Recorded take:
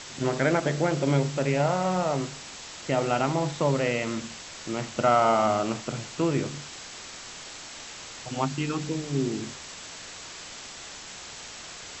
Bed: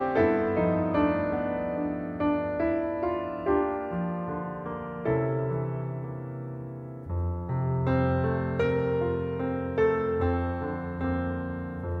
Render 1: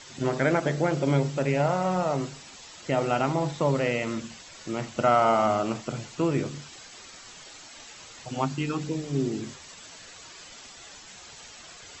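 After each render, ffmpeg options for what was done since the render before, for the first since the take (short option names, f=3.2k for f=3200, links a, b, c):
-af "afftdn=nr=9:nf=-42"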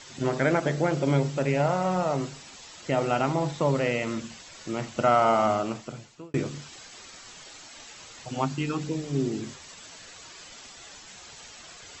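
-filter_complex "[0:a]asplit=2[a][b];[a]atrim=end=6.34,asetpts=PTS-STARTPTS,afade=t=out:st=5.5:d=0.84[c];[b]atrim=start=6.34,asetpts=PTS-STARTPTS,afade=t=in:d=0.004:c=hsin[d];[c][d]concat=n=2:v=0:a=1"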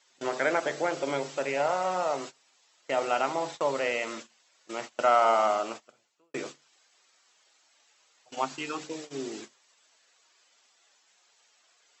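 -af "agate=range=-19dB:threshold=-33dB:ratio=16:detection=peak,highpass=490"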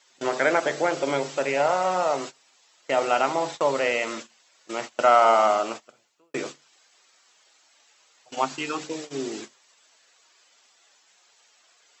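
-af "volume=5dB"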